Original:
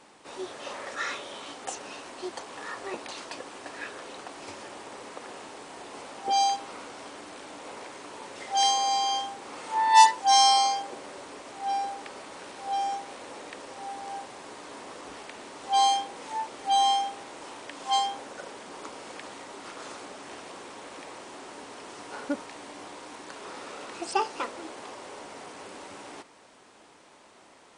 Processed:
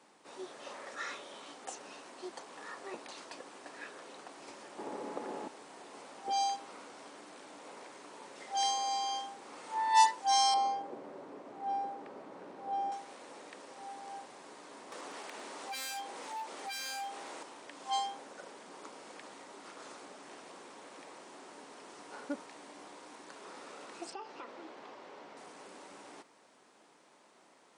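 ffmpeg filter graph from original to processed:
-filter_complex "[0:a]asettb=1/sr,asplit=3[s0][s1][s2];[s0]atrim=end=4.784[s3];[s1]atrim=start=4.78:end=5.48,asetpts=PTS-STARTPTS,afade=t=in:d=0.004:c=qsin,afade=t=out:st=0.696:d=0.004:c=qsin,equalizer=f=290:w=0.36:g=13,aeval=exprs='val(0)+0.0112*sin(2*PI*850*n/s)':c=same[s4];[s2]atrim=start=5.476[s5];[s3][s4]acrossfade=d=0.004:c1=hsin:c2=qsin[s6];[s6][s5]acrossfade=d=0.004:c1=qsin:c2=hsin,asettb=1/sr,asplit=3[s7][s8][s9];[s7]atrim=end=10.544[s10];[s8]atrim=start=10.54:end=12.92,asetpts=PTS-STARTPTS,afade=t=in:d=0.004:c=qsin,afade=t=out:st=2.376:d=0.004:c=qsin,lowpass=f=3200:p=1,tiltshelf=f=1100:g=7[s11];[s9]atrim=start=12.916[s12];[s10][s11]acrossfade=d=0.004:c1=hsin:c2=qsin[s13];[s13][s12]acrossfade=d=0.004:c1=qsin:c2=hsin,asettb=1/sr,asplit=3[s14][s15][s16];[s14]atrim=end=14.924[s17];[s15]atrim=start=14.92:end=17.43,asetpts=PTS-STARTPTS,afade=t=in:d=0.004:c=qsin,afade=t=out:st=2.506:d=0.004:c=qsin,acompressor=mode=upward:threshold=0.0447:ratio=2.5:attack=3.2:release=140:knee=2.83:detection=peak,aeval=exprs='0.0473*(abs(mod(val(0)/0.0473+3,4)-2)-1)':c=same,highpass=f=310:p=1[s18];[s16]atrim=start=17.426[s19];[s17][s18]acrossfade=d=0.004:c1=hsin:c2=qsin[s20];[s20][s19]acrossfade=d=0.004:c1=qsin:c2=hsin,asettb=1/sr,asplit=3[s21][s22][s23];[s21]atrim=end=24.104[s24];[s22]atrim=start=24.1:end=25.37,asetpts=PTS-STARTPTS,afade=t=in:d=0.004:c=qsin,afade=t=out:st=1.266:d=0.004:c=qsin,lowpass=4200,acompressor=threshold=0.02:ratio=4:attack=3.2:release=140:knee=1:detection=peak[s25];[s23]atrim=start=25.366[s26];[s24][s25]acrossfade=d=0.004:c1=hsin:c2=qsin[s27];[s27][s26]acrossfade=d=0.004:c1=qsin:c2=hsin,highpass=f=140:w=0.5412,highpass=f=140:w=1.3066,equalizer=f=2900:t=o:w=0.77:g=-2,volume=0.398"

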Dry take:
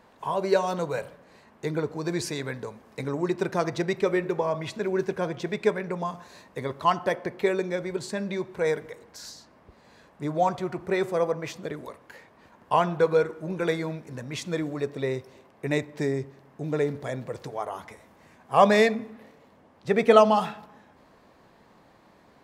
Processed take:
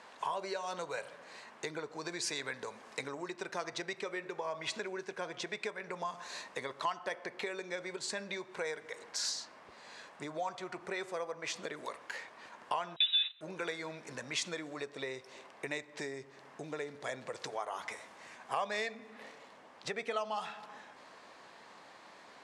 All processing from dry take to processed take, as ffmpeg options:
-filter_complex "[0:a]asettb=1/sr,asplit=3[s0][s1][s2];[s0]atrim=end=12.964[s3];[s1]atrim=start=12.96:end=13.41,asetpts=PTS-STARTPTS,afade=t=in:d=0.004:c=qsin,afade=t=out:st=0.446:d=0.004:c=qsin,aeval=exprs='val(0)+0.5*0.0266*sgn(val(0))':c=same,agate=range=0.0562:threshold=0.0355:ratio=16:release=100:detection=peak,lowpass=f=3400:t=q:w=0.5098,lowpass=f=3400:t=q:w=0.6013,lowpass=f=3400:t=q:w=0.9,lowpass=f=3400:t=q:w=2.563,afreqshift=-4000[s4];[s2]atrim=start=13.406[s5];[s3][s4]acrossfade=d=0.004:c1=hsin:c2=qsin[s6];[s6][s5]acrossfade=d=0.004:c1=qsin:c2=hsin,lowpass=f=9300:w=0.5412,lowpass=f=9300:w=1.3066,acompressor=threshold=0.0141:ratio=5,highpass=f=1300:p=1,volume=2.51"

